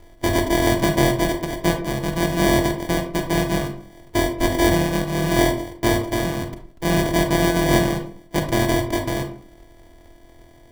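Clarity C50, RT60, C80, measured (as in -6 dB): 8.0 dB, 0.50 s, 13.0 dB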